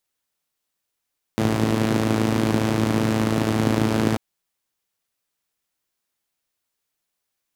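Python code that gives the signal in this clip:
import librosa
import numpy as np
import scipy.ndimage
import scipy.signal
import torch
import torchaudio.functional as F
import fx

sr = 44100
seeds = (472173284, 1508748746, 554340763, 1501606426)

y = fx.engine_four(sr, seeds[0], length_s=2.79, rpm=3300, resonances_hz=(140.0, 240.0))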